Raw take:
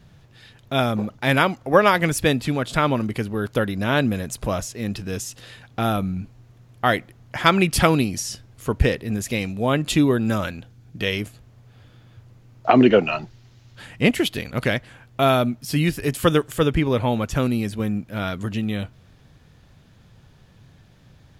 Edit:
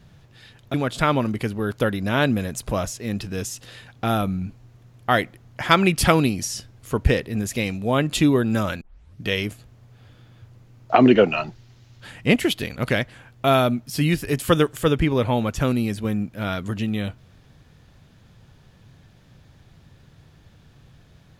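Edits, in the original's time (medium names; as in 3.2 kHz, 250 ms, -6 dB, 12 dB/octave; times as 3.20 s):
0.74–2.49 s: delete
10.56 s: tape start 0.42 s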